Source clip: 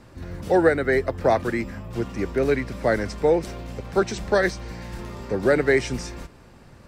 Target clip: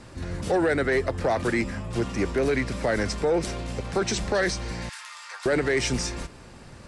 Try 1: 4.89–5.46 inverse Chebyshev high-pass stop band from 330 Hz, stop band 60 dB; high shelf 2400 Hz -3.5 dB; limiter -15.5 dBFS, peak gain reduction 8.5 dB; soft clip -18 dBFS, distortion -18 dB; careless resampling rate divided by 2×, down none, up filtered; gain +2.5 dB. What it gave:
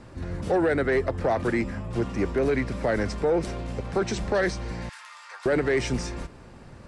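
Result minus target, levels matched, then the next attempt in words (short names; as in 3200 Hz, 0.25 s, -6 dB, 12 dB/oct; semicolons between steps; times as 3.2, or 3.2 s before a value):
4000 Hz band -5.5 dB
4.89–5.46 inverse Chebyshev high-pass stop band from 330 Hz, stop band 60 dB; high shelf 2400 Hz +5.5 dB; limiter -15.5 dBFS, peak gain reduction 9.5 dB; soft clip -18 dBFS, distortion -18 dB; careless resampling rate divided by 2×, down none, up filtered; gain +2.5 dB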